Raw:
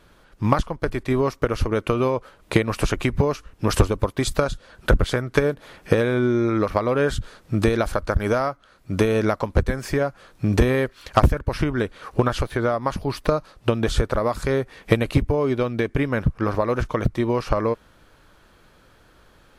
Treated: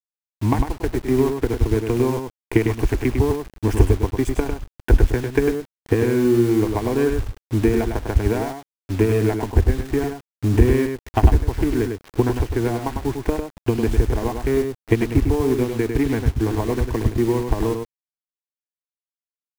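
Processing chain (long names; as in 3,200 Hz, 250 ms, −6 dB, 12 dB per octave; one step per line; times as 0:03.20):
adaptive Wiener filter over 15 samples
high-pass filter 57 Hz 6 dB per octave
low-shelf EQ 340 Hz +12 dB
phaser with its sweep stopped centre 840 Hz, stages 8
in parallel at −11 dB: comparator with hysteresis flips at −18.5 dBFS
on the sum: bit reduction 6 bits
on a send: single-tap delay 101 ms −6 dB
on the sum: level −2.5 dB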